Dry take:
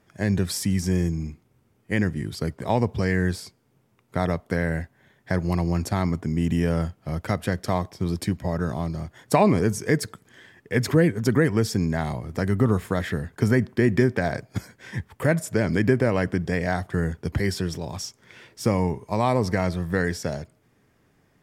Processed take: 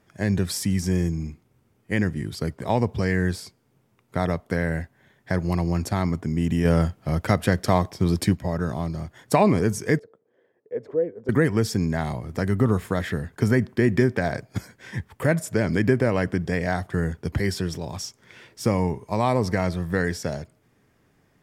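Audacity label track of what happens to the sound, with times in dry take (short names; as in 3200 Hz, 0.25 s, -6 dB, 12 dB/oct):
6.650000	8.350000	gain +4.5 dB
9.990000	11.290000	band-pass 490 Hz, Q 4.4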